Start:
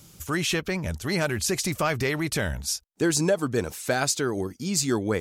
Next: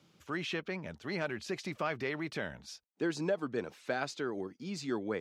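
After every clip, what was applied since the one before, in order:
three-way crossover with the lows and the highs turned down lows −20 dB, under 150 Hz, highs −23 dB, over 4,400 Hz
level −9 dB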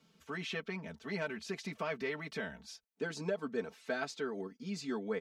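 comb filter 4.5 ms, depth 98%
level −5 dB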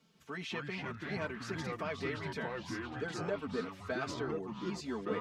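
delay with pitch and tempo change per echo 157 ms, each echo −4 semitones, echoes 3
level −1.5 dB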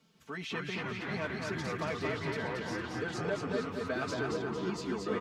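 repeating echo 227 ms, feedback 47%, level −3.5 dB
level +1.5 dB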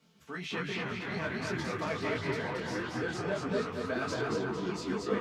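micro pitch shift up and down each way 48 cents
level +5 dB

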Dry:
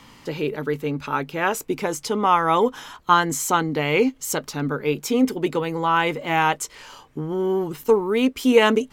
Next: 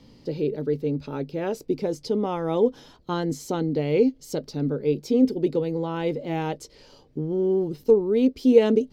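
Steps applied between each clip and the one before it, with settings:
drawn EQ curve 530 Hz 0 dB, 1,100 Hz −19 dB, 3,100 Hz −13 dB, 4,700 Hz −3 dB, 7,200 Hz −17 dB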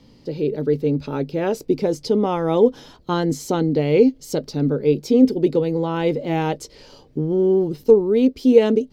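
automatic gain control gain up to 5 dB
level +1 dB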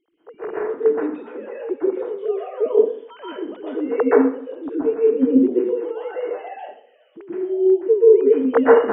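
three sine waves on the formant tracks
dense smooth reverb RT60 0.56 s, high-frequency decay 0.95×, pre-delay 110 ms, DRR −7.5 dB
level −8 dB

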